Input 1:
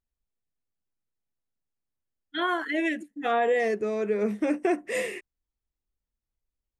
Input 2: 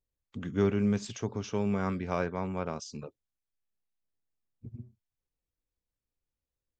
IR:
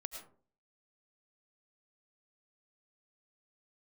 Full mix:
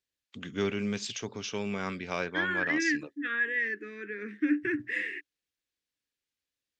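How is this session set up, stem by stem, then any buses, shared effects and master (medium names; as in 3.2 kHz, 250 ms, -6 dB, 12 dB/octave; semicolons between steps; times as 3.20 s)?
+2.5 dB, 0.00 s, no send, two resonant band-passes 700 Hz, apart 2.5 oct
-2.5 dB, 0.00 s, no send, none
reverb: none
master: frequency weighting D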